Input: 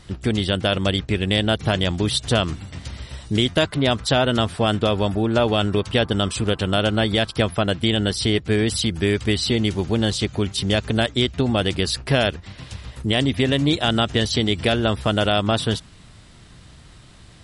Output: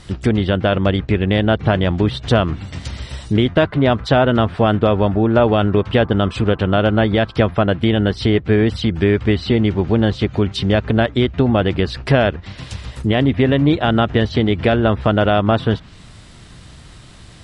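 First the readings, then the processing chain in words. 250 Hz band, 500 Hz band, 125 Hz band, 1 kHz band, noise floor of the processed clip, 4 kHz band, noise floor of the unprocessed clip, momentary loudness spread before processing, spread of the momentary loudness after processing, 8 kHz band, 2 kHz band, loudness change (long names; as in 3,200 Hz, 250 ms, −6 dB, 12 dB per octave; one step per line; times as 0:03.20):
+5.5 dB, +5.5 dB, +5.5 dB, +5.0 dB, −41 dBFS, −4.0 dB, −46 dBFS, 5 LU, 5 LU, below −10 dB, +2.5 dB, +4.0 dB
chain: treble cut that deepens with the level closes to 1,900 Hz, closed at −18 dBFS
level +5.5 dB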